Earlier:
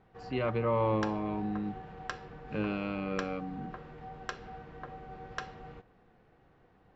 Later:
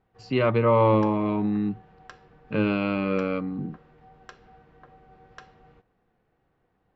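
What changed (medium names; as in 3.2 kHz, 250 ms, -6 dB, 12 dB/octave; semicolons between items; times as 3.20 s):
speech +9.5 dB; background -7.5 dB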